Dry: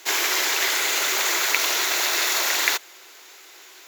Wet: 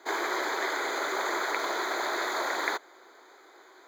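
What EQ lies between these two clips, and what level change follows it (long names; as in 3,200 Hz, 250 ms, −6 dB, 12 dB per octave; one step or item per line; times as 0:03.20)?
moving average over 16 samples
+1.0 dB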